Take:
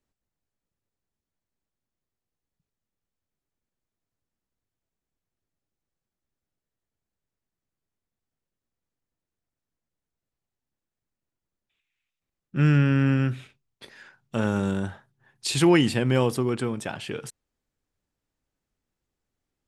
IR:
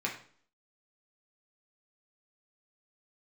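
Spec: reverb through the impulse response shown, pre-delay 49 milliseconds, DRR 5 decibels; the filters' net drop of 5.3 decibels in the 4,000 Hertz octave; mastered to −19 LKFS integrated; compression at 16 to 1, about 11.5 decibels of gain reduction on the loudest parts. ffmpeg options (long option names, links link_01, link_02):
-filter_complex "[0:a]equalizer=frequency=4000:width_type=o:gain=-7.5,acompressor=threshold=-26dB:ratio=16,asplit=2[link_01][link_02];[1:a]atrim=start_sample=2205,adelay=49[link_03];[link_02][link_03]afir=irnorm=-1:irlink=0,volume=-10.5dB[link_04];[link_01][link_04]amix=inputs=2:normalize=0,volume=12.5dB"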